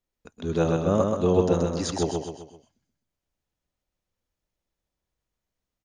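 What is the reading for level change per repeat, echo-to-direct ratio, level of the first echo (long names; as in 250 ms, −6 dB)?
−7.0 dB, −2.5 dB, −3.5 dB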